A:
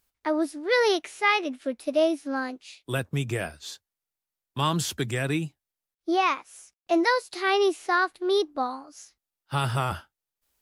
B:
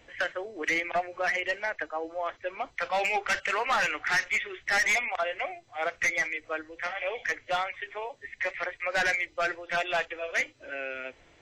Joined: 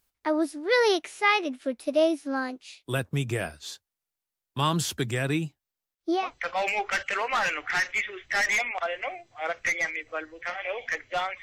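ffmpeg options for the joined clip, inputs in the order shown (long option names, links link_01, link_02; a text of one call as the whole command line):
ffmpeg -i cue0.wav -i cue1.wav -filter_complex "[0:a]asettb=1/sr,asplit=3[link_01][link_02][link_03];[link_01]atrim=end=5.044[link_04];[link_02]atrim=start=5.04:end=6.31,asetpts=PTS-STARTPTS,afade=type=in:duration=0.004:curve=qsin,afade=type=out:start_time=1.266:duration=0.004:curve=qsin,equalizer=frequency=10000:width_type=o:width=0.21:gain=-7.5[link_05];[link_03]atrim=start=6.306[link_06];[link_04][link_05]acrossfade=duration=0.004:curve1=hsin:curve2=qsin[link_07];[link_07][link_06]acrossfade=duration=0.004:curve1=qsin:curve2=hsin,apad=whole_dur=11.42,atrim=end=11.42,atrim=end=6.31,asetpts=PTS-STARTPTS[link_08];[1:a]atrim=start=2.48:end=7.79,asetpts=PTS-STARTPTS[link_09];[link_08][link_09]acrossfade=duration=0.2:curve1=tri:curve2=tri" out.wav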